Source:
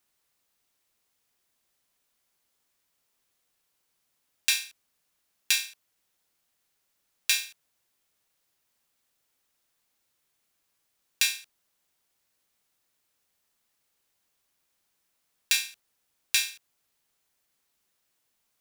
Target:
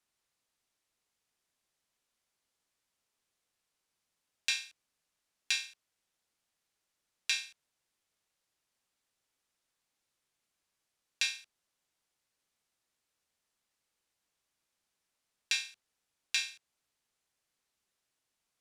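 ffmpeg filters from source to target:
-filter_complex "[0:a]lowpass=10k,acrossover=split=220|7200[a][b][c];[c]acompressor=threshold=-47dB:ratio=6[d];[a][b][d]amix=inputs=3:normalize=0,volume=-5.5dB"

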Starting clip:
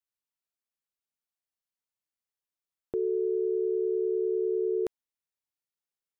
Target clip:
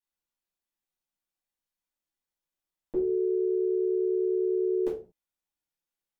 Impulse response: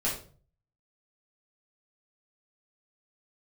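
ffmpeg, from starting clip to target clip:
-filter_complex "[1:a]atrim=start_sample=2205,afade=t=out:st=0.37:d=0.01,atrim=end_sample=16758,asetrate=57330,aresample=44100[a];[0:a][a]afir=irnorm=-1:irlink=0,volume=-3.5dB"

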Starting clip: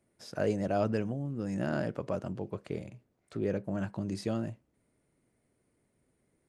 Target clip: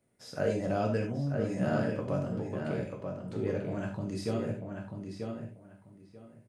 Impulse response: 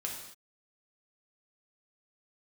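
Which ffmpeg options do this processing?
-filter_complex "[0:a]asplit=2[a][b];[b]adelay=939,lowpass=f=3.6k:p=1,volume=-5dB,asplit=2[c][d];[d]adelay=939,lowpass=f=3.6k:p=1,volume=0.2,asplit=2[e][f];[f]adelay=939,lowpass=f=3.6k:p=1,volume=0.2[g];[a][c][e][g]amix=inputs=4:normalize=0[h];[1:a]atrim=start_sample=2205,atrim=end_sample=4410[i];[h][i]afir=irnorm=-1:irlink=0"

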